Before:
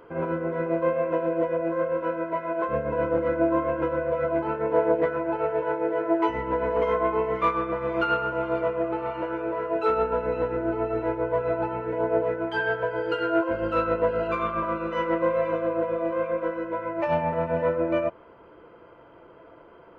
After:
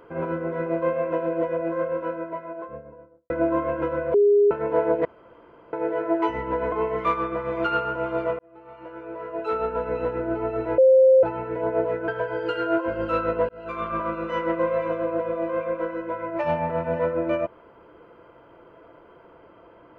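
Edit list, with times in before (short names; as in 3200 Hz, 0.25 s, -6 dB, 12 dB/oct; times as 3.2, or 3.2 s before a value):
1.72–3.3 studio fade out
4.14–4.51 bleep 409 Hz -13.5 dBFS
5.05–5.73 room tone
6.72–7.09 cut
8.76–10.37 fade in
11.15–11.6 bleep 525 Hz -11 dBFS
12.45–12.71 cut
14.12–14.55 fade in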